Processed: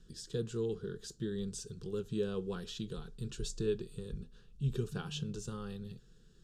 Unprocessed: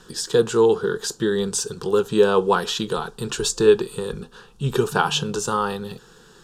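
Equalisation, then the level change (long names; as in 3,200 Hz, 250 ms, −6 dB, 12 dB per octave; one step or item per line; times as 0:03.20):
guitar amp tone stack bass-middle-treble 10-0-1
high-shelf EQ 9,600 Hz −11 dB
notch filter 910 Hz, Q 8.6
+4.0 dB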